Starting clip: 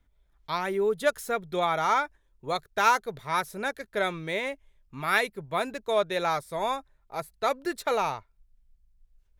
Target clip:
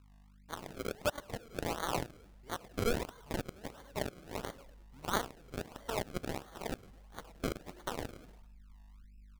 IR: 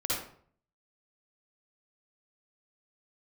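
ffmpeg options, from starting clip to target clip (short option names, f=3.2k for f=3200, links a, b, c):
-filter_complex "[0:a]asplit=2[a][b];[1:a]atrim=start_sample=2205,afade=t=out:st=0.16:d=0.01,atrim=end_sample=7497[c];[b][c]afir=irnorm=-1:irlink=0,volume=-17dB[d];[a][d]amix=inputs=2:normalize=0,aphaser=in_gain=1:out_gain=1:delay=2.7:decay=0.26:speed=0.23:type=sinusoidal,aeval=exprs='val(0)+0.00708*(sin(2*PI*50*n/s)+sin(2*PI*2*50*n/s)/2+sin(2*PI*3*50*n/s)/3+sin(2*PI*4*50*n/s)/4+sin(2*PI*5*50*n/s)/5)':c=same,asubboost=boost=4:cutoff=55,asplit=2[e][f];[f]adelay=105,lowpass=f=3.1k:p=1,volume=-6.5dB,asplit=2[g][h];[h]adelay=105,lowpass=f=3.1k:p=1,volume=0.34,asplit=2[i][j];[j]adelay=105,lowpass=f=3.1k:p=1,volume=0.34,asplit=2[k][l];[l]adelay=105,lowpass=f=3.1k:p=1,volume=0.34[m];[e][g][i][k][m]amix=inputs=5:normalize=0,acrusher=samples=33:mix=1:aa=0.000001:lfo=1:lforange=33:lforate=1.5,aeval=exprs='0.316*(cos(1*acos(clip(val(0)/0.316,-1,1)))-cos(1*PI/2))+0.112*(cos(3*acos(clip(val(0)/0.316,-1,1)))-cos(3*PI/2))+0.0562*(cos(5*acos(clip(val(0)/0.316,-1,1)))-cos(5*PI/2))+0.0447*(cos(7*acos(clip(val(0)/0.316,-1,1)))-cos(7*PI/2))':c=same,acompressor=threshold=-39dB:ratio=1.5"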